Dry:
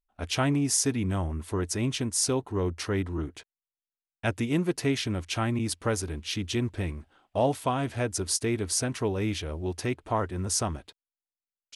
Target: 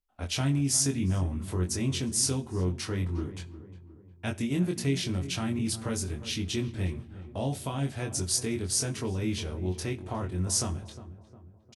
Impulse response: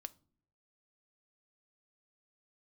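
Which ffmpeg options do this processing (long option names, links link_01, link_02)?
-filter_complex "[0:a]acrossover=split=270|3000[link_01][link_02][link_03];[link_02]acompressor=threshold=-42dB:ratio=2[link_04];[link_01][link_04][link_03]amix=inputs=3:normalize=0,asplit=2[link_05][link_06];[link_06]adelay=357,lowpass=frequency=1300:poles=1,volume=-13.5dB,asplit=2[link_07][link_08];[link_08]adelay=357,lowpass=frequency=1300:poles=1,volume=0.51,asplit=2[link_09][link_10];[link_10]adelay=357,lowpass=frequency=1300:poles=1,volume=0.51,asplit=2[link_11][link_12];[link_12]adelay=357,lowpass=frequency=1300:poles=1,volume=0.51,asplit=2[link_13][link_14];[link_14]adelay=357,lowpass=frequency=1300:poles=1,volume=0.51[link_15];[link_05][link_07][link_09][link_11][link_13][link_15]amix=inputs=6:normalize=0,asplit=2[link_16][link_17];[1:a]atrim=start_sample=2205,asetrate=27342,aresample=44100,adelay=22[link_18];[link_17][link_18]afir=irnorm=-1:irlink=0,volume=-0.5dB[link_19];[link_16][link_19]amix=inputs=2:normalize=0,volume=-1.5dB"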